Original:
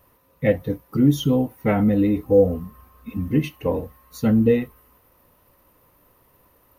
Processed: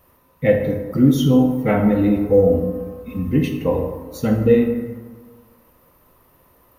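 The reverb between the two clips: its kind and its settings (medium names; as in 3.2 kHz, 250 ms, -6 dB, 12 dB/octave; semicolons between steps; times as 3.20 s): plate-style reverb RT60 1.5 s, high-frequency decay 0.45×, DRR 2.5 dB; trim +1.5 dB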